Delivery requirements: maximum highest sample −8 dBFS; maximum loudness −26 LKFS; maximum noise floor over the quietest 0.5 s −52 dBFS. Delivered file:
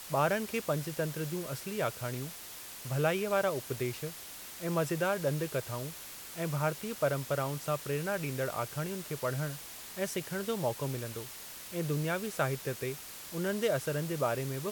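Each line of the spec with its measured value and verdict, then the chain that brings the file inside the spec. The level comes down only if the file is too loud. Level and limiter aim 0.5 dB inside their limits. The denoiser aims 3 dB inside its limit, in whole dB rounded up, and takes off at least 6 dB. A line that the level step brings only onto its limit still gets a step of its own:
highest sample −16.0 dBFS: in spec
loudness −34.5 LKFS: in spec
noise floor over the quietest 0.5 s −46 dBFS: out of spec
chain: broadband denoise 9 dB, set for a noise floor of −46 dBFS

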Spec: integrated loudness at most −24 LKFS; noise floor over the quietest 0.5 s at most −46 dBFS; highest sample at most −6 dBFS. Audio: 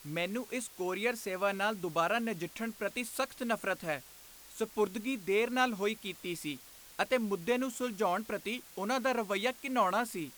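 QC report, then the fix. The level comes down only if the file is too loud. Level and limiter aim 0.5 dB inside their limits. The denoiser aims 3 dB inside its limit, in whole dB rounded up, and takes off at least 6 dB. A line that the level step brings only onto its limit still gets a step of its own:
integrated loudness −33.5 LKFS: in spec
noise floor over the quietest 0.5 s −54 dBFS: in spec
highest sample −15.5 dBFS: in spec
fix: no processing needed

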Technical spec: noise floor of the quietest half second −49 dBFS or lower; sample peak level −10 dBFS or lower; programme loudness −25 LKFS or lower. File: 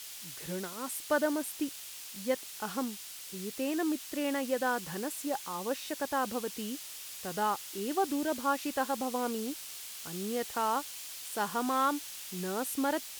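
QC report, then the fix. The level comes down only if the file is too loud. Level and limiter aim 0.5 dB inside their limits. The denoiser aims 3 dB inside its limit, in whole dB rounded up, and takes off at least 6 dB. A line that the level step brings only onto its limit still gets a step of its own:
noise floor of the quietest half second −45 dBFS: out of spec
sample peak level −16.5 dBFS: in spec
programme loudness −34.0 LKFS: in spec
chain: broadband denoise 7 dB, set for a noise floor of −45 dBFS

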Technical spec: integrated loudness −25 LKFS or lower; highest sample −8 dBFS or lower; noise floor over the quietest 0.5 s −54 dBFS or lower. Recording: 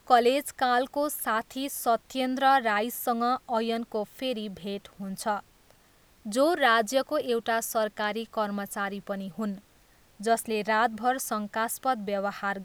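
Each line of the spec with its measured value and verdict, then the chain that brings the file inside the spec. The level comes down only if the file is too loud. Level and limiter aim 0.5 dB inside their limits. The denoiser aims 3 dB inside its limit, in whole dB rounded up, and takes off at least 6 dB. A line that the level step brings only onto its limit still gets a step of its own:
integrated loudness −28.0 LKFS: in spec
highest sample −6.5 dBFS: out of spec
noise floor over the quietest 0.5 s −60 dBFS: in spec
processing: brickwall limiter −8.5 dBFS

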